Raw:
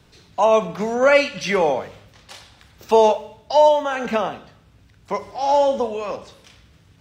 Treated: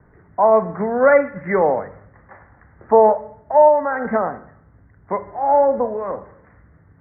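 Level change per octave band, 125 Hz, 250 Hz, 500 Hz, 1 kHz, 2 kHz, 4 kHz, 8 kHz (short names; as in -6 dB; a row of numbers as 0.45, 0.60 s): +2.0 dB, +2.0 dB, +2.0 dB, +2.0 dB, -1.0 dB, under -40 dB, n/a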